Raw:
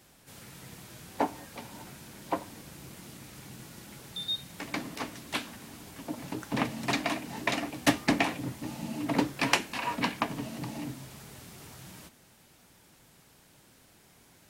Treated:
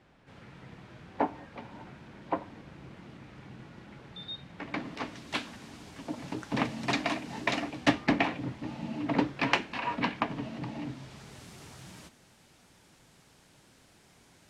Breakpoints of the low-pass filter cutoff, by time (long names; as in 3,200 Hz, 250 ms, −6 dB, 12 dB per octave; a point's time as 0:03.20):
0:04.62 2,400 Hz
0:05.33 6,200 Hz
0:07.55 6,200 Hz
0:08.05 3,400 Hz
0:10.79 3,400 Hz
0:11.46 8,500 Hz